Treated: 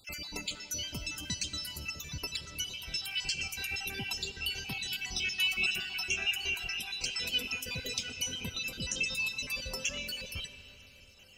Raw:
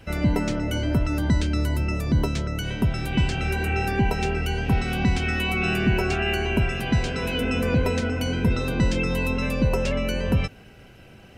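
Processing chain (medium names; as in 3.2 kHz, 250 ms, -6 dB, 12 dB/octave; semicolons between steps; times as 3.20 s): random holes in the spectrogram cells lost 47%; pre-emphasis filter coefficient 0.9; reverb removal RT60 1 s; high-order bell 4.1 kHz +10.5 dB; on a send: reverberation RT60 4.6 s, pre-delay 10 ms, DRR 9.5 dB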